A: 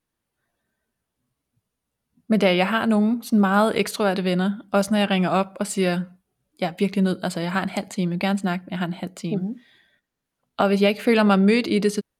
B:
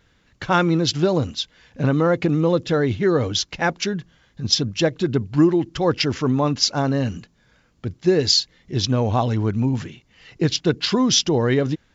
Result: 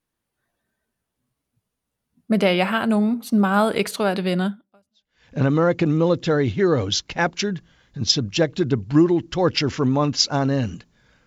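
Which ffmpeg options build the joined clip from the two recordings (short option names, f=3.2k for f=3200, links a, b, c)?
-filter_complex "[0:a]apad=whole_dur=11.26,atrim=end=11.26,atrim=end=5.27,asetpts=PTS-STARTPTS[a];[1:a]atrim=start=0.9:end=7.69,asetpts=PTS-STARTPTS[b];[a][b]acrossfade=d=0.8:c1=exp:c2=exp"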